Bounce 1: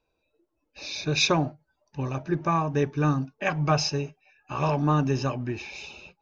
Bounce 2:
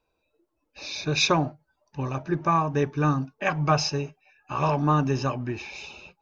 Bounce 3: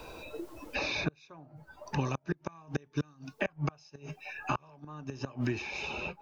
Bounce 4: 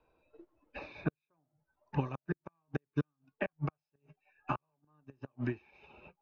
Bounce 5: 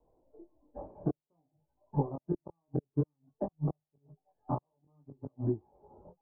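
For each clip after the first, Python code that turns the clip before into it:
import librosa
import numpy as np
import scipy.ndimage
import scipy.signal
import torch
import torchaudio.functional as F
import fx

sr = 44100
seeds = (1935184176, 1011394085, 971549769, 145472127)

y1 = fx.peak_eq(x, sr, hz=1100.0, db=3.5, octaves=0.99)
y2 = fx.gate_flip(y1, sr, shuts_db=-17.0, range_db=-35)
y2 = fx.band_squash(y2, sr, depth_pct=100)
y3 = scipy.signal.sosfilt(scipy.signal.butter(2, 2300.0, 'lowpass', fs=sr, output='sos'), y2)
y3 = fx.upward_expand(y3, sr, threshold_db=-45.0, expansion=2.5)
y3 = y3 * librosa.db_to_amplitude(1.5)
y4 = fx.chorus_voices(y3, sr, voices=2, hz=0.55, base_ms=21, depth_ms=2.4, mix_pct=45)
y4 = scipy.signal.sosfilt(scipy.signal.butter(6, 880.0, 'lowpass', fs=sr, output='sos'), y4)
y4 = y4 * librosa.db_to_amplitude(6.5)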